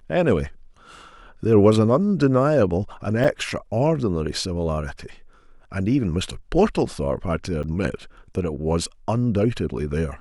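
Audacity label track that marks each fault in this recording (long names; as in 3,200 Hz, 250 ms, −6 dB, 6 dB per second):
3.240000	3.240000	drop-out 4.7 ms
7.630000	7.640000	drop-out 7.9 ms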